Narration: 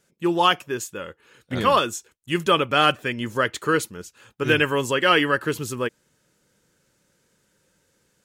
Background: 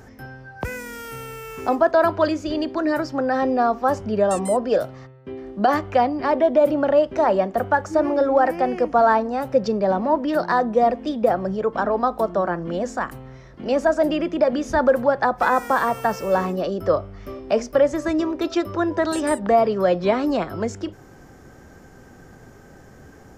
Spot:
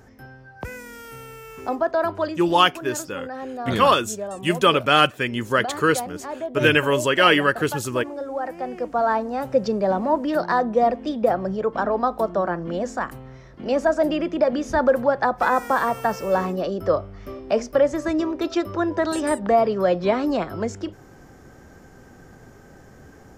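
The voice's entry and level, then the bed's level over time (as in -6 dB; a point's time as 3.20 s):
2.15 s, +2.0 dB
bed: 2.22 s -5 dB
2.46 s -12 dB
8.25 s -12 dB
9.46 s -1 dB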